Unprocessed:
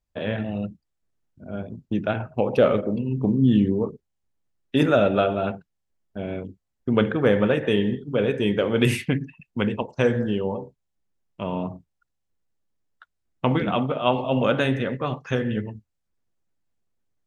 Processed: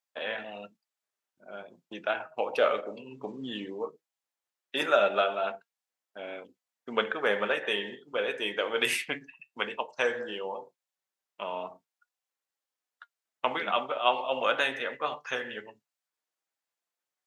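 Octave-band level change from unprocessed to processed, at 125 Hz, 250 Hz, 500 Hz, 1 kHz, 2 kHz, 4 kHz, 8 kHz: -28.5, -19.5, -7.5, -1.5, 0.0, 0.0, 0.0 dB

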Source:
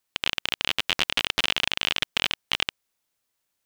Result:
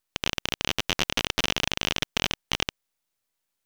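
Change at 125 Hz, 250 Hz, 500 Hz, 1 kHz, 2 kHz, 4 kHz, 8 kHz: +7.5, +6.5, +4.0, +0.5, -2.5, -3.0, +4.5 dB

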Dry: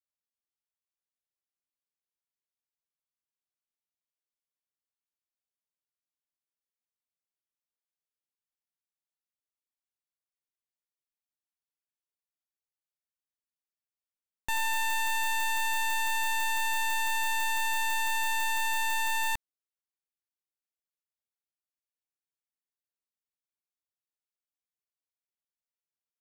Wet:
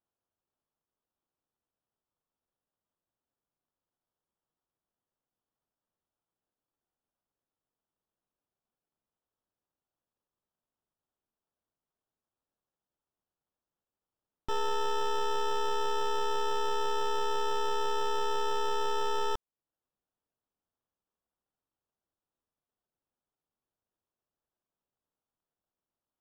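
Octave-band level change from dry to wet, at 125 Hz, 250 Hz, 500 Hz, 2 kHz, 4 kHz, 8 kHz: n/a, +8.5 dB, +25.0 dB, -13.5 dB, -3.0 dB, -11.5 dB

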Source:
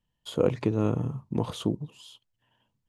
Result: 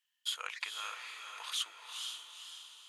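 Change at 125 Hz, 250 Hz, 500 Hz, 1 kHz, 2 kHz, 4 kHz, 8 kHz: under -40 dB, under -40 dB, -32.5 dB, -5.5 dB, +5.5 dB, +6.5 dB, +6.5 dB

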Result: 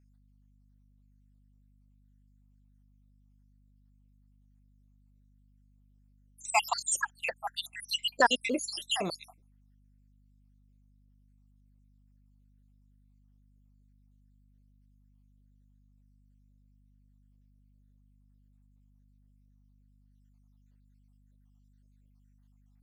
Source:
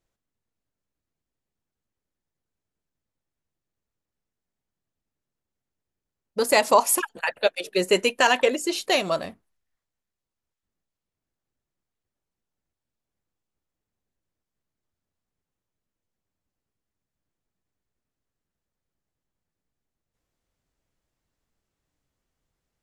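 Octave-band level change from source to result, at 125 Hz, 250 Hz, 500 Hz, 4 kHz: -6.5, -9.0, -14.5, -4.5 dB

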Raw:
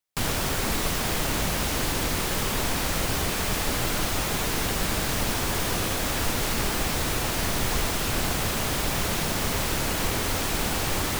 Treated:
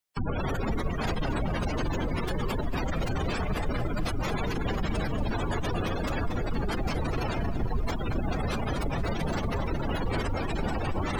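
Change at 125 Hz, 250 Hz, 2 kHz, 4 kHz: 0.0, -0.5, -7.0, -12.5 dB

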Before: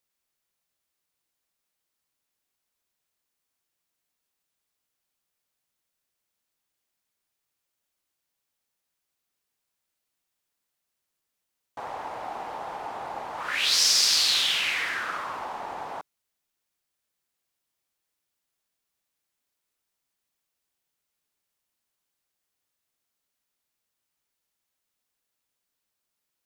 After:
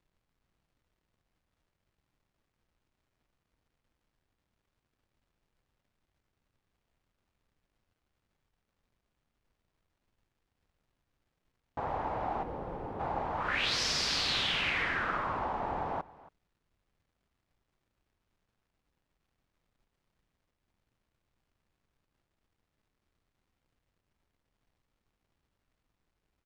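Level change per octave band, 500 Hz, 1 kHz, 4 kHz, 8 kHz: +1.5, -0.5, -9.0, -15.0 dB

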